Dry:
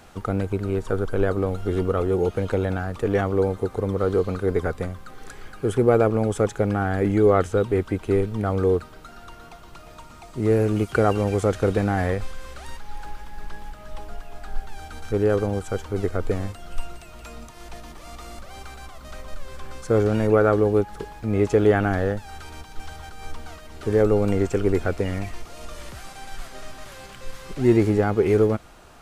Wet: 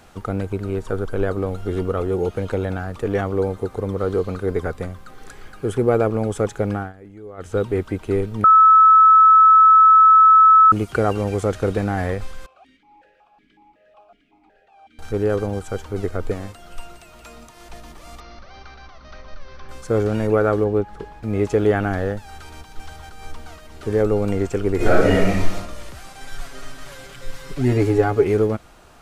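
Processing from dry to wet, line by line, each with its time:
0:06.74–0:07.56: duck −21 dB, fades 0.19 s
0:08.44–0:10.72: beep over 1,300 Hz −7 dBFS
0:12.46–0:14.99: formant filter that steps through the vowels 5.4 Hz
0:16.33–0:17.70: low-shelf EQ 140 Hz −7 dB
0:18.20–0:19.69: Chebyshev low-pass with heavy ripple 6,100 Hz, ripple 3 dB
0:20.64–0:21.23: low-pass filter 2,600 Hz 6 dB per octave
0:24.76–0:25.54: thrown reverb, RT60 0.87 s, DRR −11 dB
0:26.20–0:28.24: comb filter 7.1 ms, depth 87%

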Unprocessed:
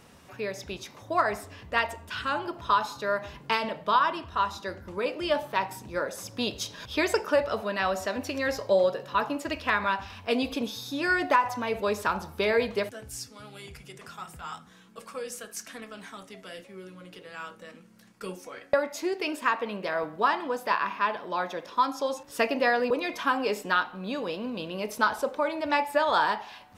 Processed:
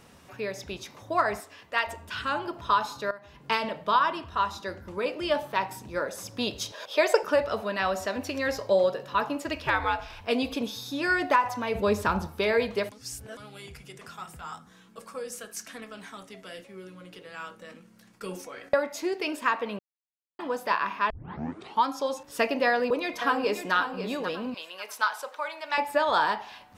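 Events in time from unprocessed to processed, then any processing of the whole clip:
0:01.40–0:01.87: high-pass filter 670 Hz 6 dB per octave
0:03.11–0:03.52: fade in quadratic, from −15.5 dB
0:06.72–0:07.23: high-pass with resonance 560 Hz, resonance Q 3.2
0:09.66–0:10.21: frequency shifter −120 Hz
0:11.75–0:12.27: low-shelf EQ 280 Hz +11 dB
0:12.92–0:13.37: reverse
0:14.43–0:15.33: dynamic equaliser 2,800 Hz, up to −6 dB, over −57 dBFS, Q 1.3
0:17.61–0:18.69: level that may fall only so fast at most 76 dB per second
0:19.79–0:20.39: silence
0:21.10: tape start 0.76 s
0:22.67–0:23.74: delay throw 540 ms, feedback 35%, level −9 dB
0:24.54–0:25.78: high-pass filter 980 Hz

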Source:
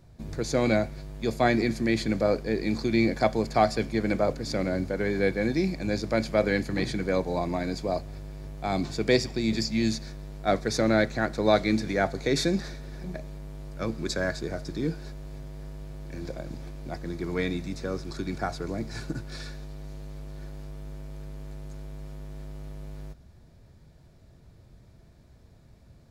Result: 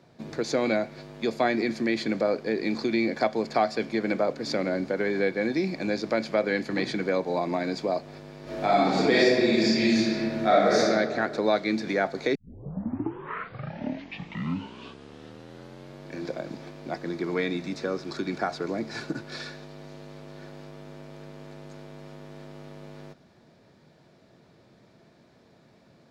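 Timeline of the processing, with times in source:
0:08.43–0:10.78: thrown reverb, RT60 1.5 s, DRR −10.5 dB
0:12.35: tape start 3.77 s
whole clip: three-way crossover with the lows and the highs turned down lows −22 dB, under 150 Hz, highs −14 dB, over 5,700 Hz; downward compressor 2 to 1, threshold −30 dBFS; low-shelf EQ 96 Hz −10 dB; level +5.5 dB

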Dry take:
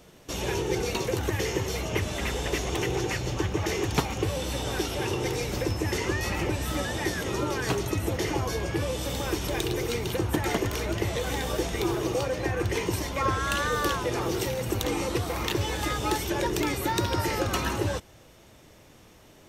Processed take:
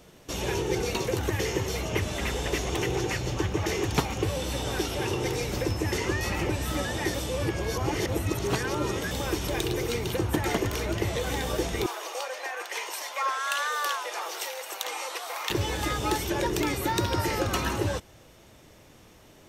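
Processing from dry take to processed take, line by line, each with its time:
0:07.14–0:09.11: reverse
0:11.86–0:15.50: high-pass filter 640 Hz 24 dB per octave

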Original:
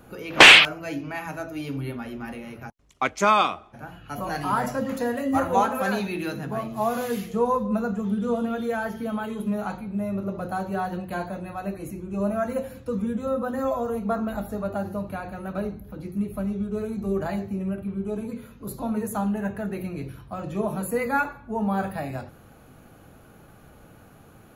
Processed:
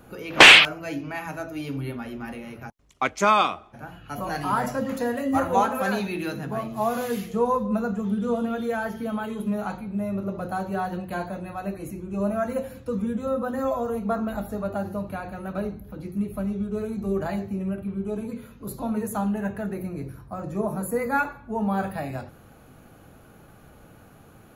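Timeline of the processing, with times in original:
0:19.73–0:21.12: parametric band 3,100 Hz −13 dB 0.74 octaves

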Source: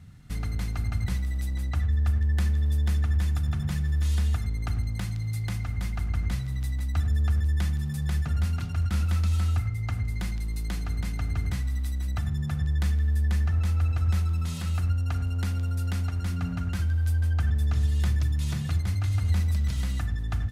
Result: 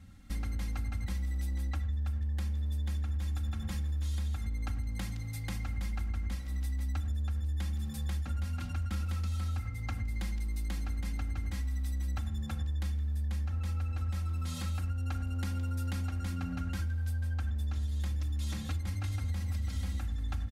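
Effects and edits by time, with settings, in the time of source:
0:18.89–0:19.48: delay throw 500 ms, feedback 35%, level −5.5 dB
whole clip: comb filter 3.7 ms, depth 93%; downward compressor, threshold −26 dBFS; level −4.5 dB

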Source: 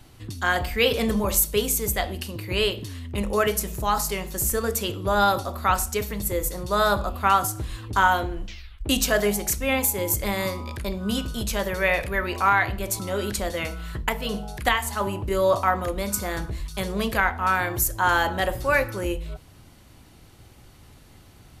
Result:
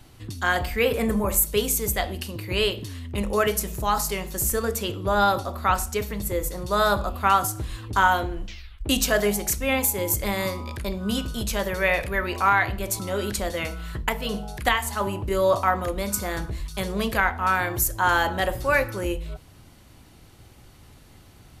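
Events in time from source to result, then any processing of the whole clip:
0:00.79–0:01.47: flat-topped bell 4,200 Hz −9.5 dB 1.3 octaves
0:04.65–0:06.62: high-shelf EQ 4,800 Hz −4 dB

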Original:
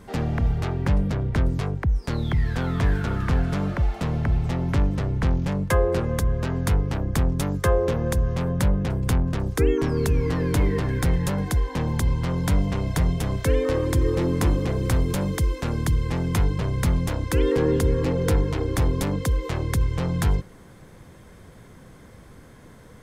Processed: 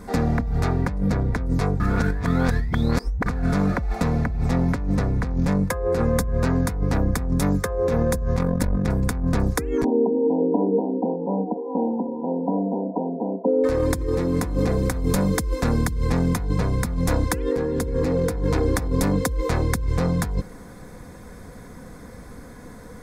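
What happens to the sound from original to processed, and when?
0:01.80–0:03.26: reverse
0:08.36–0:08.89: amplitude modulation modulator 46 Hz, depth 65%
0:09.84–0:13.64: linear-phase brick-wall band-pass 190–1,000 Hz
whole clip: parametric band 3,000 Hz −12.5 dB 0.37 octaves; compressor whose output falls as the input rises −25 dBFS, ratio −1; comb filter 4.1 ms, depth 40%; level +3.5 dB

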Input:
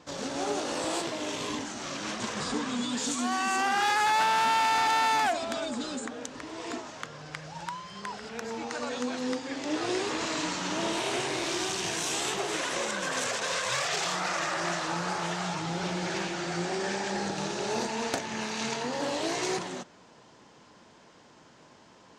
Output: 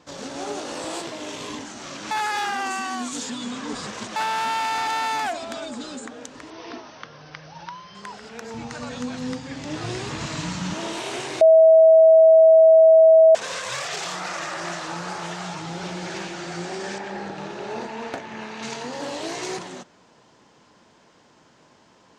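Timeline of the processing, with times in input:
0:02.11–0:04.16: reverse
0:06.50–0:07.95: Chebyshev low-pass filter 6,200 Hz, order 10
0:08.54–0:10.74: low shelf with overshoot 220 Hz +13.5 dB, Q 1.5
0:11.41–0:13.35: beep over 645 Hz −8.5 dBFS
0:16.98–0:18.63: bass and treble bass −2 dB, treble −14 dB

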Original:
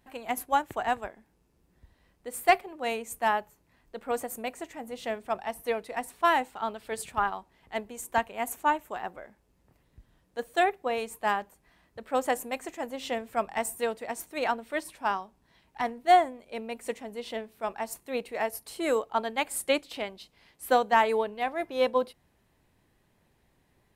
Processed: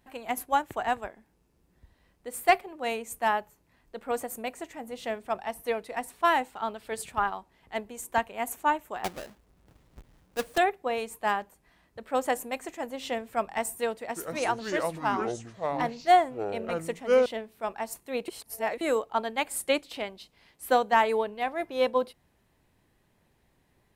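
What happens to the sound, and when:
0:09.04–0:10.58: each half-wave held at its own peak
0:14.01–0:17.26: delay with pitch and tempo change per echo 147 ms, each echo −6 semitones, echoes 2
0:18.28–0:18.81: reverse

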